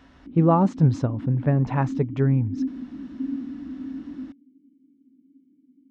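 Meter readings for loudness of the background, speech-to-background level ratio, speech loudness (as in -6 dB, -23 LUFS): -34.0 LUFS, 11.5 dB, -22.5 LUFS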